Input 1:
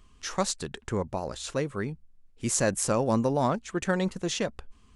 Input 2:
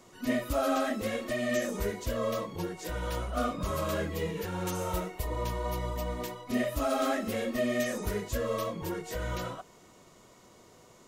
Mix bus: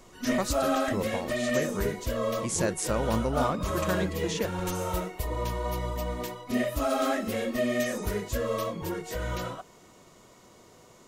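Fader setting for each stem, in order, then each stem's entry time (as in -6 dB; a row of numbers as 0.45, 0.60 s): -3.5, +2.0 dB; 0.00, 0.00 s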